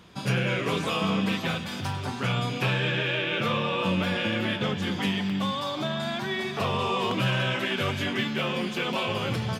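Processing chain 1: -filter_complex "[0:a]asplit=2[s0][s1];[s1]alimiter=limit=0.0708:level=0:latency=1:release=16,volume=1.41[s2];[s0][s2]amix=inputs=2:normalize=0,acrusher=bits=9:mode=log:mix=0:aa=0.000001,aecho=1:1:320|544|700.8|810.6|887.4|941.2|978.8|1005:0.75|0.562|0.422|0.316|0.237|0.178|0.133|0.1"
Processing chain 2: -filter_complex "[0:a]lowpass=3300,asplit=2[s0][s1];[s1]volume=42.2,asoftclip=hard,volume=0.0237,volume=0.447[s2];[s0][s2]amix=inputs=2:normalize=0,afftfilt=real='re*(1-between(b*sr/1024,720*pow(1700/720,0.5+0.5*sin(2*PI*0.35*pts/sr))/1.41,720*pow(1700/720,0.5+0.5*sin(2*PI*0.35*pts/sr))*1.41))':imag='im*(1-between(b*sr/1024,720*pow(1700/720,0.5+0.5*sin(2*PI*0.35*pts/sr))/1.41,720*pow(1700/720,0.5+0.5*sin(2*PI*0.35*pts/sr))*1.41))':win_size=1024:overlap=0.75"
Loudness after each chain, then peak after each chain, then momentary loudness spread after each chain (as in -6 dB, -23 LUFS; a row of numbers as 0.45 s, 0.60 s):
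-18.0 LUFS, -27.0 LUFS; -5.0 dBFS, -14.0 dBFS; 2 LU, 4 LU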